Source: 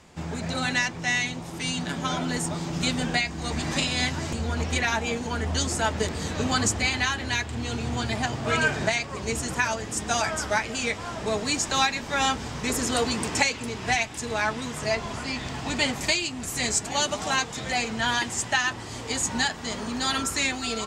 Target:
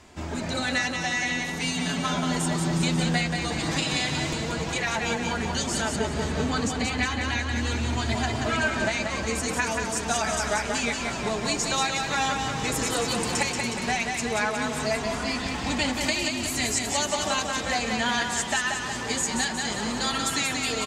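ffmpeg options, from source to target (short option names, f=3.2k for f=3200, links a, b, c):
-filter_complex "[0:a]acompressor=threshold=-26dB:ratio=3,aecho=1:1:182|364|546|728|910|1092|1274|1456:0.596|0.351|0.207|0.122|0.0722|0.0426|0.0251|0.0148,flanger=delay=2.9:depth=3.6:regen=-41:speed=0.12:shape=triangular,asettb=1/sr,asplit=3[a][b][c];[a]atrim=end=5.964[d];[b]atrim=start=5.96:end=7.56,asetpts=PTS-STARTPTS,afade=t=in:d=0.004:c=qsin,afade=t=out:st=1.596:d=0.004:c=qsin,highshelf=f=4.2k:g=-7[e];[c]atrim=start=7.556[f];[d][e]acrossfade=d=0.004:c1=hsin:c2=qsin[g];[g][f]acrossfade=d=0.004:c1=qsin:c2=hsin,volume=5.5dB"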